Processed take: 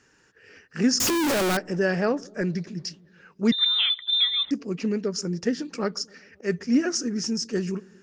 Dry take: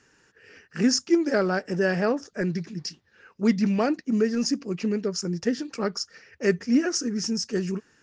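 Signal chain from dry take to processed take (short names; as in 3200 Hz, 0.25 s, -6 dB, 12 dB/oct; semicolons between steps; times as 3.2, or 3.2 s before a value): 1–1.57 infinite clipping; 5.97–6.61 auto swell 0.132 s; on a send: dark delay 0.132 s, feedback 63%, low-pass 530 Hz, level -22.5 dB; 3.52–4.51 on the sum: inverted band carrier 3800 Hz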